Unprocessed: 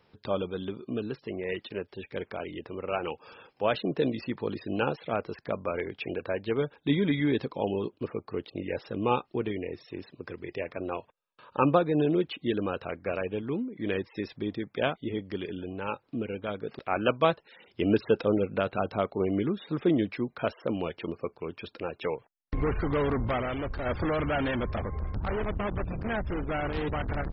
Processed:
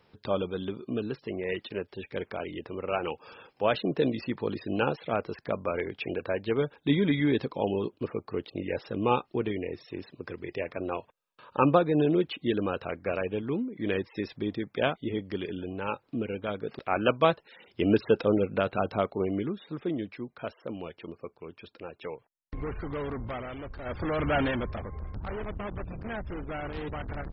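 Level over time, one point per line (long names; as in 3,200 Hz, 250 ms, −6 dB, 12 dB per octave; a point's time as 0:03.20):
0:18.99 +1 dB
0:19.88 −7 dB
0:23.81 −7 dB
0:24.37 +3 dB
0:24.81 −5 dB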